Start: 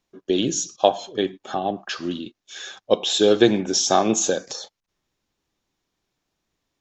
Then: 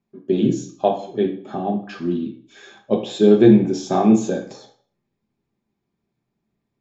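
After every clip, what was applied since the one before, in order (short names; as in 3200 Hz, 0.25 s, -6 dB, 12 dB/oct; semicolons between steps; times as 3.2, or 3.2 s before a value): tilt -4.5 dB/oct; reverb RT60 0.50 s, pre-delay 3 ms, DRR 1.5 dB; gain -4.5 dB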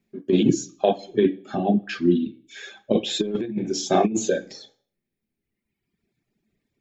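reverb removal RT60 1.5 s; ten-band EQ 125 Hz -5 dB, 1000 Hz -12 dB, 2000 Hz +5 dB; negative-ratio compressor -20 dBFS, ratio -0.5; gain +2.5 dB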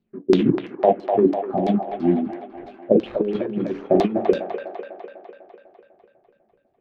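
median filter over 25 samples; LFO low-pass saw down 3 Hz 320–4700 Hz; band-limited delay 0.249 s, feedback 61%, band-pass 1200 Hz, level -3 dB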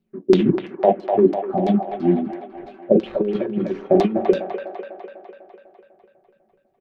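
comb 5.3 ms, depth 39%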